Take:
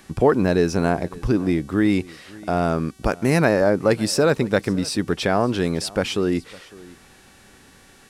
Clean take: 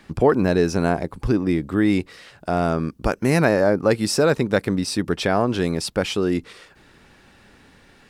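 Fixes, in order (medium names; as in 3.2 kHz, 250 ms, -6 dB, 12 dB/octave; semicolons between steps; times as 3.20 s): de-hum 379.9 Hz, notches 31; inverse comb 555 ms -22 dB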